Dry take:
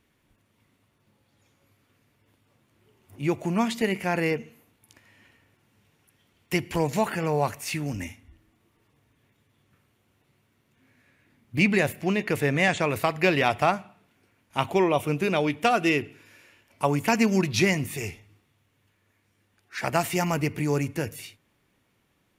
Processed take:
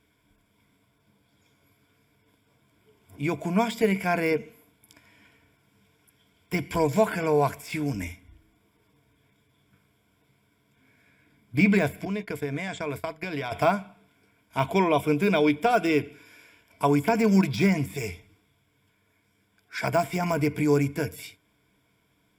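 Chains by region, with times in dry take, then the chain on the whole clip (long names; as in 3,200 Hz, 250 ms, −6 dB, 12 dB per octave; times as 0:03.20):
0:12.05–0:13.52: downward expander −26 dBFS + parametric band 2,600 Hz −3.5 dB 0.21 octaves + downward compressor 12 to 1, threshold −28 dBFS
whole clip: de-essing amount 80%; EQ curve with evenly spaced ripples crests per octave 1.7, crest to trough 11 dB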